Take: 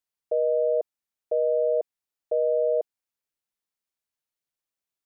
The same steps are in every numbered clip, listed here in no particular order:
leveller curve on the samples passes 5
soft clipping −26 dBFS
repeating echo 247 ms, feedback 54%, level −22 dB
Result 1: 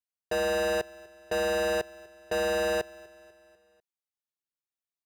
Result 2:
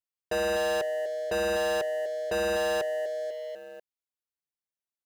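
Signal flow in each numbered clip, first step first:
soft clipping, then leveller curve on the samples, then repeating echo
repeating echo, then soft clipping, then leveller curve on the samples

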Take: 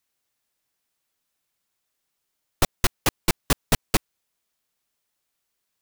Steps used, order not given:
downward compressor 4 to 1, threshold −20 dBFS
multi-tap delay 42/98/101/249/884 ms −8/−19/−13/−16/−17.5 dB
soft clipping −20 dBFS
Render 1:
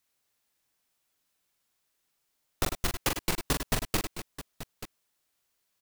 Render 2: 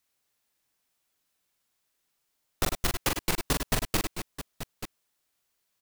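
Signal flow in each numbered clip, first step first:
downward compressor, then multi-tap delay, then soft clipping
multi-tap delay, then soft clipping, then downward compressor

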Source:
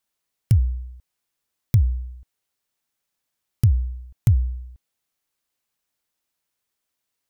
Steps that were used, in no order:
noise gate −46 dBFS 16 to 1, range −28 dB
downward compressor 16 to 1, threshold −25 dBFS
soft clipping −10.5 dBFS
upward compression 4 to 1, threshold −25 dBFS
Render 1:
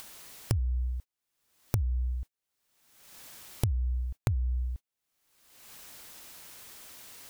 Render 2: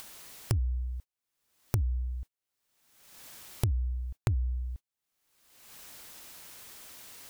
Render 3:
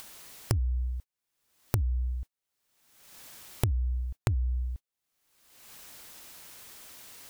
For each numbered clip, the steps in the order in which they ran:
noise gate, then downward compressor, then upward compression, then soft clipping
noise gate, then upward compression, then soft clipping, then downward compressor
soft clipping, then downward compressor, then noise gate, then upward compression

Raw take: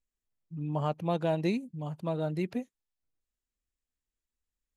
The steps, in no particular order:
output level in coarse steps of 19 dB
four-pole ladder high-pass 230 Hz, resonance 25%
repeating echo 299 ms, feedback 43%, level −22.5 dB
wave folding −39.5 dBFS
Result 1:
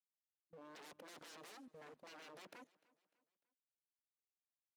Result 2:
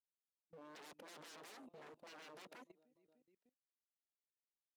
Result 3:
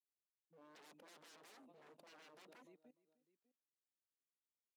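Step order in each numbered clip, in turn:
wave folding, then four-pole ladder high-pass, then output level in coarse steps, then repeating echo
repeating echo, then wave folding, then four-pole ladder high-pass, then output level in coarse steps
repeating echo, then wave folding, then output level in coarse steps, then four-pole ladder high-pass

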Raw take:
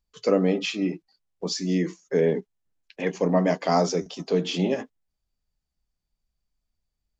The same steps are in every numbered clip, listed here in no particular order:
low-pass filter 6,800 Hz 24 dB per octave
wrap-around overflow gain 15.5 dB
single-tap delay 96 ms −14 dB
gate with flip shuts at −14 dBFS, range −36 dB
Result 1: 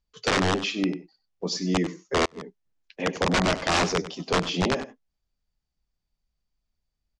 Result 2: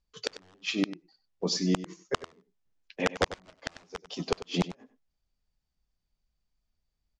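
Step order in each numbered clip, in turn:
wrap-around overflow, then single-tap delay, then gate with flip, then low-pass filter
wrap-around overflow, then low-pass filter, then gate with flip, then single-tap delay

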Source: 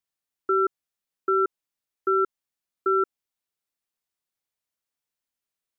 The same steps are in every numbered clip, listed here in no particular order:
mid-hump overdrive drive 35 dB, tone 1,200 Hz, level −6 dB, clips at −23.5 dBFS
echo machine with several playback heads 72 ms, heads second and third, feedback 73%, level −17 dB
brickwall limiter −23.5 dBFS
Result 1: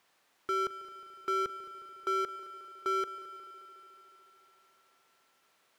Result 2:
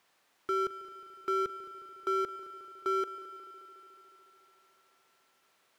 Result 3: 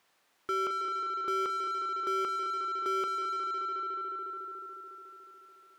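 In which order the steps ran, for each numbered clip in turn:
brickwall limiter, then mid-hump overdrive, then echo machine with several playback heads
mid-hump overdrive, then brickwall limiter, then echo machine with several playback heads
brickwall limiter, then echo machine with several playback heads, then mid-hump overdrive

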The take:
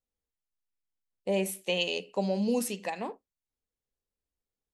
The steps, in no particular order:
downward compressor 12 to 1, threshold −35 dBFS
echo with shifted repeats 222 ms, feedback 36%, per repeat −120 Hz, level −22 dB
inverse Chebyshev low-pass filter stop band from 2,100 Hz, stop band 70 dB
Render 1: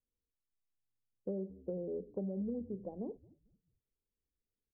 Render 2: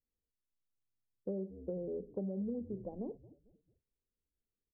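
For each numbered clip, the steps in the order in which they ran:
inverse Chebyshev low-pass filter, then downward compressor, then echo with shifted repeats
echo with shifted repeats, then inverse Chebyshev low-pass filter, then downward compressor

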